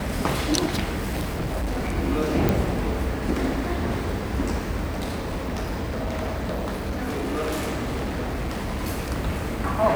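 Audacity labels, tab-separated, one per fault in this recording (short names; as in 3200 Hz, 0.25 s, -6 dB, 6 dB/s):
0.980000	1.980000	clipped -23 dBFS
2.490000	2.490000	pop
4.930000	8.790000	clipped -23.5 dBFS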